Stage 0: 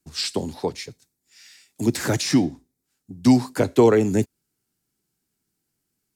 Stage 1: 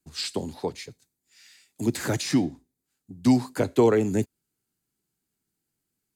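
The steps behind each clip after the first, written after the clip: band-stop 5.5 kHz, Q 10; trim -4 dB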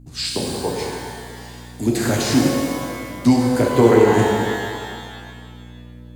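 hum 60 Hz, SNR 19 dB; pitch-shifted reverb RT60 2 s, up +12 st, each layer -8 dB, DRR -2 dB; trim +3.5 dB

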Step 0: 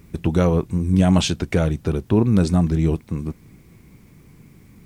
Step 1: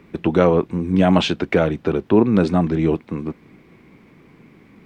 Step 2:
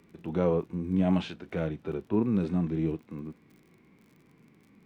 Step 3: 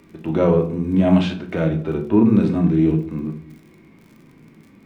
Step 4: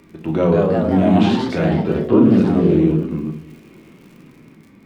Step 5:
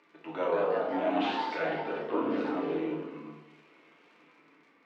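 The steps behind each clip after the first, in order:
three-band isolator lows -16 dB, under 210 Hz, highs -21 dB, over 3.7 kHz; trim +6 dB
harmonic-percussive split percussive -14 dB; crackle 44 per s -41 dBFS; trim -8.5 dB
reverberation RT60 0.50 s, pre-delay 3 ms, DRR 5 dB; trim +9 dB
in parallel at 0 dB: peak limiter -11.5 dBFS, peak gain reduction 7.5 dB; on the sum: ever faster or slower copies 214 ms, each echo +2 st, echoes 3; trim -4.5 dB
band-pass 680–3400 Hz; FDN reverb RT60 0.77 s, low-frequency decay 0.95×, high-frequency decay 0.75×, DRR 0 dB; trim -8.5 dB

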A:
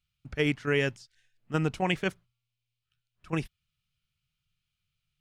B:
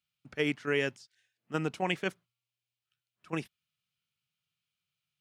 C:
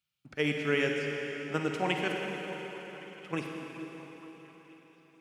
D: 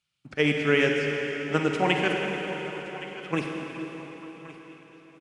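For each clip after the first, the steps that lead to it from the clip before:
high-pass 190 Hz 12 dB/octave; trim -2.5 dB
repeats whose band climbs or falls 223 ms, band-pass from 250 Hz, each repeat 0.7 oct, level -7 dB; reverberation RT60 4.2 s, pre-delay 41 ms, DRR 1 dB
delay 1121 ms -17.5 dB; trim +6.5 dB; Nellymoser 44 kbps 22.05 kHz

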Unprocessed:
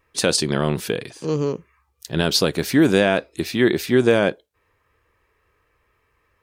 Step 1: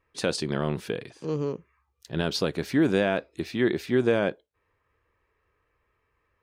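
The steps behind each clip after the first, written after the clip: low-pass 3.2 kHz 6 dB/octave; trim -6.5 dB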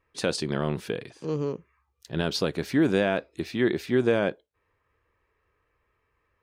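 no audible change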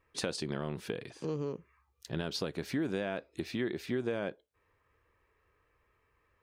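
compression 3:1, threshold -34 dBFS, peak gain reduction 12.5 dB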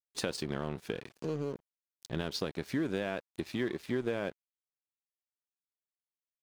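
crossover distortion -49 dBFS; trim +1.5 dB

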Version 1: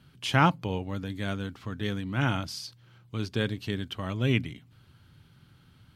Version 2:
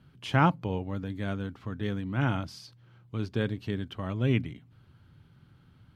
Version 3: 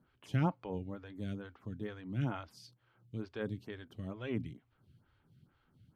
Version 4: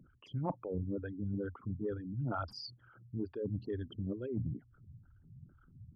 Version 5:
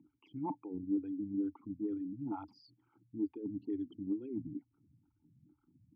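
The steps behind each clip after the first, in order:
treble shelf 2.5 kHz -11 dB
lamp-driven phase shifter 2.2 Hz; trim -5.5 dB
resonances exaggerated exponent 3; reverse; compression 10:1, threshold -44 dBFS, peak gain reduction 18 dB; reverse; trim +10.5 dB
vowel filter u; trim +9 dB

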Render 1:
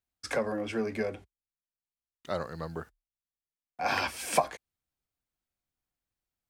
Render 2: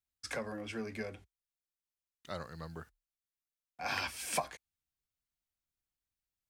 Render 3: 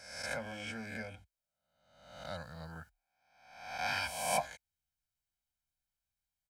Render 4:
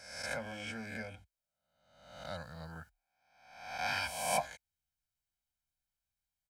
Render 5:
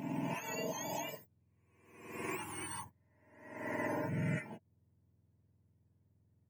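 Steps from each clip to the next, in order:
peaking EQ 500 Hz -7.5 dB 2.8 oct; trim -3 dB
reverse spectral sustain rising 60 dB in 0.88 s; comb 1.3 ms, depth 79%; trim -5 dB
no audible change
spectrum inverted on a logarithmic axis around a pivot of 1.2 kHz; compression 4:1, threshold -44 dBFS, peak gain reduction 16 dB; trim +8 dB

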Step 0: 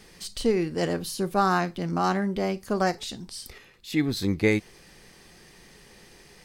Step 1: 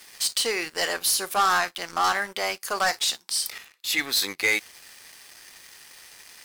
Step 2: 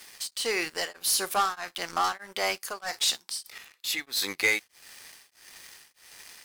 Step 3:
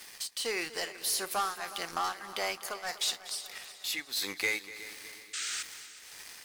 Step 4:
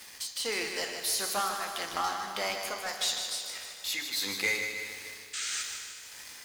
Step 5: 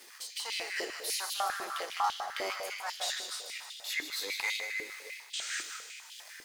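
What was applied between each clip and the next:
high-pass 1.1 kHz 12 dB/octave; treble shelf 9 kHz +7.5 dB; waveshaping leveller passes 3
tremolo of two beating tones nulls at 1.6 Hz
compression 1.5:1, threshold -39 dBFS, peak gain reduction 7 dB; painted sound noise, 5.33–5.63 s, 1.2–9 kHz -36 dBFS; multi-head delay 122 ms, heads second and third, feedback 56%, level -16 dB
on a send at -6 dB: reverberation RT60 1.0 s, pre-delay 3 ms; on the sum: bit-crushed delay 153 ms, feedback 55%, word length 9-bit, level -6.5 dB
step-sequenced high-pass 10 Hz 350–3200 Hz; trim -5.5 dB

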